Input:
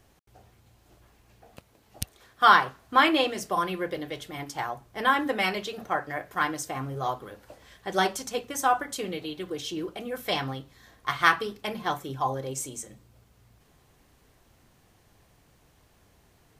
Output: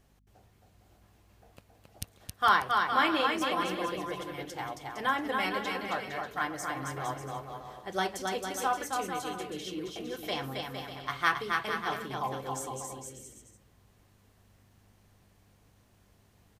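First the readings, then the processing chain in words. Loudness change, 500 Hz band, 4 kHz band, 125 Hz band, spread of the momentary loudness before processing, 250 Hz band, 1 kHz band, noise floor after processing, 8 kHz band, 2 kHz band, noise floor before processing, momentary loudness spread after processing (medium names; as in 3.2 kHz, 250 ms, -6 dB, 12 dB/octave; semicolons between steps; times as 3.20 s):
-4.5 dB, -4.5 dB, -4.5 dB, -4.5 dB, 15 LU, -4.5 dB, -4.5 dB, -64 dBFS, -4.5 dB, -4.5 dB, -62 dBFS, 15 LU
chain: hum 50 Hz, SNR 30 dB; on a send: bouncing-ball echo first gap 270 ms, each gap 0.7×, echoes 5; on the sum: trim -6.5 dB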